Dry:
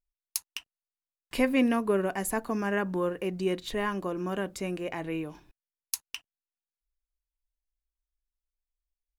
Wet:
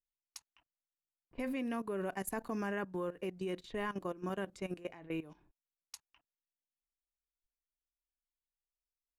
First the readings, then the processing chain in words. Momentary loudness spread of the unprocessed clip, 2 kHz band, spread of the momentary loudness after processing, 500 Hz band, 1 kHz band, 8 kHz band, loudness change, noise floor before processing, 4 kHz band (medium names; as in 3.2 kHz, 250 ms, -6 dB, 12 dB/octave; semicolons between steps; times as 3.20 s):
12 LU, -10.0 dB, 17 LU, -9.5 dB, -8.5 dB, -13.5 dB, -9.0 dB, under -85 dBFS, -13.0 dB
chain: level held to a coarse grid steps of 16 dB; level-controlled noise filter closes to 440 Hz, open at -33.5 dBFS; trim -4.5 dB